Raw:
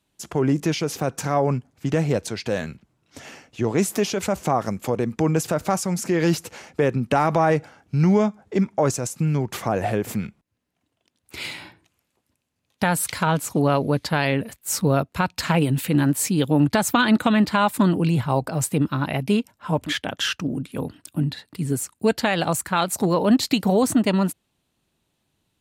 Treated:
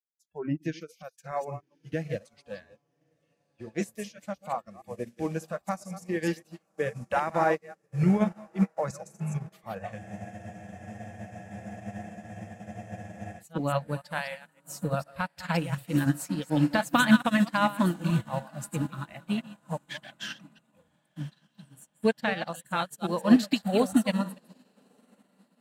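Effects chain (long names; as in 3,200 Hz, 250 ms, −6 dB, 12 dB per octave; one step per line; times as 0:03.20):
delay that plays each chunk backwards 146 ms, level −6.5 dB
noise reduction from a noise print of the clip's start 27 dB
dynamic equaliser 1,700 Hz, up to +4 dB, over −38 dBFS, Q 2.9
feedback delay with all-pass diffusion 1,163 ms, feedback 59%, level −14.5 dB
frozen spectrum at 0:10.00, 3.40 s
expander for the loud parts 2.5 to 1, over −37 dBFS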